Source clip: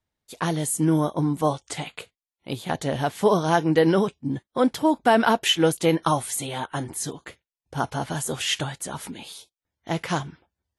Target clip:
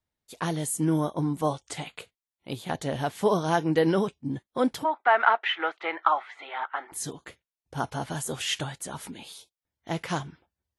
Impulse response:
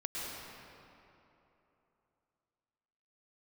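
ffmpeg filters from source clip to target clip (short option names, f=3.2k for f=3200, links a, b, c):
-filter_complex "[0:a]asplit=3[a][b][c];[a]afade=t=out:st=4.83:d=0.02[d];[b]highpass=f=470:w=0.5412,highpass=f=470:w=1.3066,equalizer=f=500:t=q:w=4:g=-9,equalizer=f=820:t=q:w=4:g=4,equalizer=f=1.3k:t=q:w=4:g=10,equalizer=f=2k:t=q:w=4:g=8,equalizer=f=2.9k:t=q:w=4:g=-3,lowpass=f=3k:w=0.5412,lowpass=f=3k:w=1.3066,afade=t=in:st=4.83:d=0.02,afade=t=out:st=6.91:d=0.02[e];[c]afade=t=in:st=6.91:d=0.02[f];[d][e][f]amix=inputs=3:normalize=0,volume=-4dB"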